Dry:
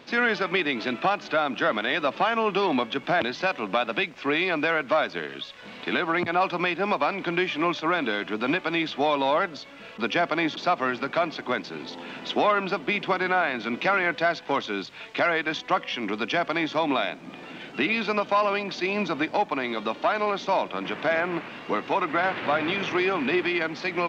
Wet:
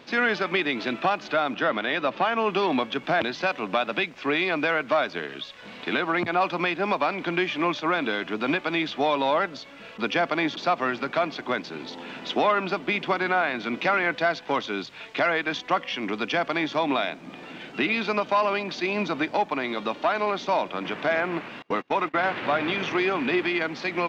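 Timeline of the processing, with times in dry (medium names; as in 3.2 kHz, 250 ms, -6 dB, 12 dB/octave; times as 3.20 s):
1.54–2.39 s: distance through air 77 m
21.62–22.15 s: gate -31 dBFS, range -29 dB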